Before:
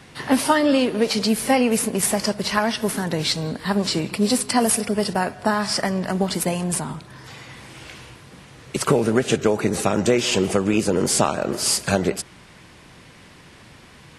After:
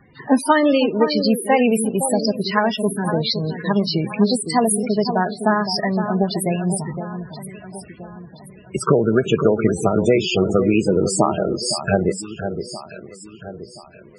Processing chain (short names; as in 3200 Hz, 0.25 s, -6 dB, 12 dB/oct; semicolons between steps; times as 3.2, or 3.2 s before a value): spectral noise reduction 7 dB; echo with dull and thin repeats by turns 0.513 s, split 1700 Hz, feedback 62%, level -8 dB; loudest bins only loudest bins 32; gain +3 dB